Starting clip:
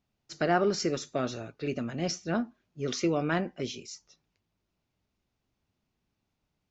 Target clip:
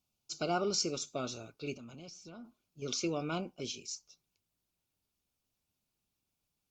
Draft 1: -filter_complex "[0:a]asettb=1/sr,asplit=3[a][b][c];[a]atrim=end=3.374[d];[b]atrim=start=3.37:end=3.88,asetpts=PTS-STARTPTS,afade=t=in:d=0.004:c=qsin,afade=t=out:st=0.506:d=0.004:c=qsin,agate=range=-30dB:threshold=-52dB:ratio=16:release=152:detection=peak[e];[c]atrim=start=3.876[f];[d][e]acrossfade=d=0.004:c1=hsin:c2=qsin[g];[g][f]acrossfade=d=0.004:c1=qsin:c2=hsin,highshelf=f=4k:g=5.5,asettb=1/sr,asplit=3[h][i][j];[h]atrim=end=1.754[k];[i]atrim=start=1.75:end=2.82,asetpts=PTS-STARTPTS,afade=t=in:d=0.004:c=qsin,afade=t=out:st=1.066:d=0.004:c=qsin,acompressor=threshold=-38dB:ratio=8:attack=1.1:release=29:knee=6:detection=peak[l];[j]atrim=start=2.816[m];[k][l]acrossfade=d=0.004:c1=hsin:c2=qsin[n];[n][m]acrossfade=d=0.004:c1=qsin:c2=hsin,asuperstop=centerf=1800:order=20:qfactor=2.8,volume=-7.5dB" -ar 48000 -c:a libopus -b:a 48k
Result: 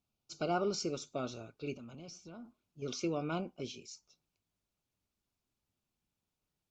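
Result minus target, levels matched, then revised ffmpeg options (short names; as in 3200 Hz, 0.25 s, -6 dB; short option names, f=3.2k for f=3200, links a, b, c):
8000 Hz band -6.0 dB
-filter_complex "[0:a]asettb=1/sr,asplit=3[a][b][c];[a]atrim=end=3.374[d];[b]atrim=start=3.37:end=3.88,asetpts=PTS-STARTPTS,afade=t=in:d=0.004:c=qsin,afade=t=out:st=0.506:d=0.004:c=qsin,agate=range=-30dB:threshold=-52dB:ratio=16:release=152:detection=peak[e];[c]atrim=start=3.876[f];[d][e]acrossfade=d=0.004:c1=hsin:c2=qsin[g];[g][f]acrossfade=d=0.004:c1=qsin:c2=hsin,highshelf=f=4k:g=17,asettb=1/sr,asplit=3[h][i][j];[h]atrim=end=1.754[k];[i]atrim=start=1.75:end=2.82,asetpts=PTS-STARTPTS,afade=t=in:d=0.004:c=qsin,afade=t=out:st=1.066:d=0.004:c=qsin,acompressor=threshold=-38dB:ratio=8:attack=1.1:release=29:knee=6:detection=peak[l];[j]atrim=start=2.816[m];[k][l]acrossfade=d=0.004:c1=hsin:c2=qsin[n];[n][m]acrossfade=d=0.004:c1=qsin:c2=hsin,asuperstop=centerf=1800:order=20:qfactor=2.8,volume=-7.5dB" -ar 48000 -c:a libopus -b:a 48k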